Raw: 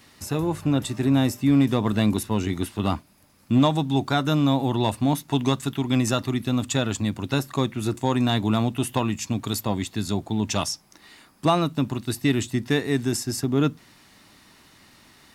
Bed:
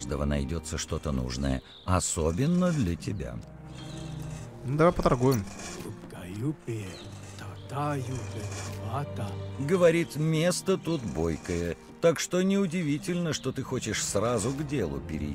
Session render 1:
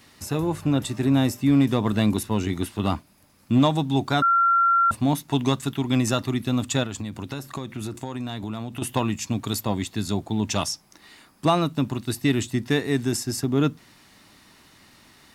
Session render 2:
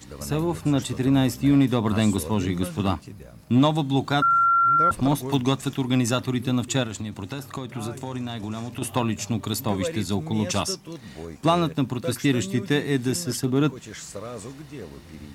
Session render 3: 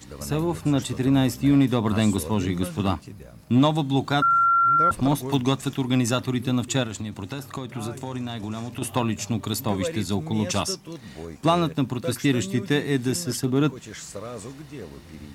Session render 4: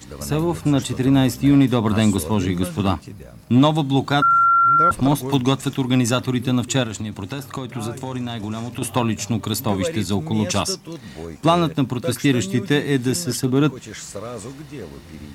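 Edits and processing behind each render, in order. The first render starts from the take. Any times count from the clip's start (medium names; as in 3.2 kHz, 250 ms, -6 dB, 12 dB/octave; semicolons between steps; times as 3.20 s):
4.22–4.91 s: bleep 1.37 kHz -15.5 dBFS; 6.83–8.82 s: compression, threshold -27 dBFS
add bed -8.5 dB
no audible change
trim +4 dB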